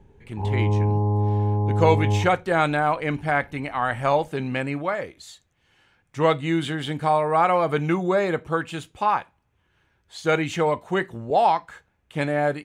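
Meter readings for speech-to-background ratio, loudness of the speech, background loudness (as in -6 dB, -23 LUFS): 0.0 dB, -23.5 LUFS, -23.5 LUFS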